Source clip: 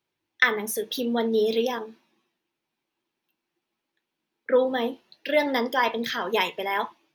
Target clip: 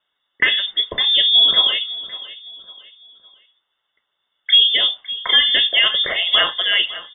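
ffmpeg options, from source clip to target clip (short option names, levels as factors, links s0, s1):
-filter_complex "[0:a]lowpass=f=3200:t=q:w=0.5098,lowpass=f=3200:t=q:w=0.6013,lowpass=f=3200:t=q:w=0.9,lowpass=f=3200:t=q:w=2.563,afreqshift=-3800,asuperstop=centerf=2400:order=8:qfactor=6.9,asplit=2[s0][s1];[s1]aecho=0:1:557|1114|1671:0.141|0.0523|0.0193[s2];[s0][s2]amix=inputs=2:normalize=0,alimiter=level_in=4.22:limit=0.891:release=50:level=0:latency=1,volume=0.708"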